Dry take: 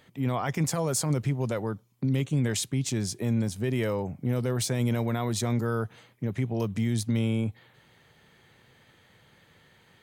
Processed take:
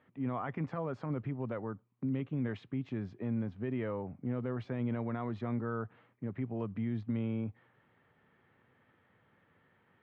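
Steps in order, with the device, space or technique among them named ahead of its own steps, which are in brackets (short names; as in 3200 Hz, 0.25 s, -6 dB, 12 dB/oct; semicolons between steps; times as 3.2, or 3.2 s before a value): bass cabinet (speaker cabinet 74–2400 Hz, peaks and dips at 140 Hz -3 dB, 260 Hz +4 dB, 1200 Hz +4 dB, 2200 Hz -3 dB); gain -8.5 dB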